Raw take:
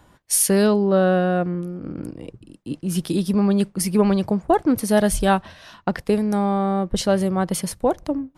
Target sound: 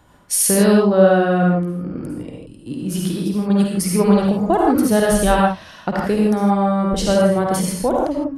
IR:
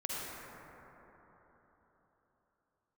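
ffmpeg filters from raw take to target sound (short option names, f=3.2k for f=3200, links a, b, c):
-filter_complex "[0:a]asettb=1/sr,asplit=3[a][b][c];[a]atrim=end=2.994[d];[b]atrim=start=2.99:end=3.5,asetpts=PTS-STARTPTS,afade=t=in:d=0.004:c=qsin,afade=t=out:st=0.506:d=0.004:c=qsin,acompressor=threshold=-26dB:ratio=2[e];[c]atrim=start=3.496[f];[d][e]acrossfade=d=0.004:c1=hsin:c2=qsin[g];[g][f]acrossfade=d=0.004:c1=qsin:c2=hsin[h];[1:a]atrim=start_sample=2205,afade=t=out:st=0.22:d=0.01,atrim=end_sample=10143[i];[h][i]afir=irnorm=-1:irlink=0,volume=3dB"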